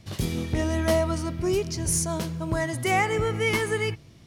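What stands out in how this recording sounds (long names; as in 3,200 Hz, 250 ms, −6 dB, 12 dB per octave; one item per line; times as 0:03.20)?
background noise floor −51 dBFS
spectral slope −4.5 dB per octave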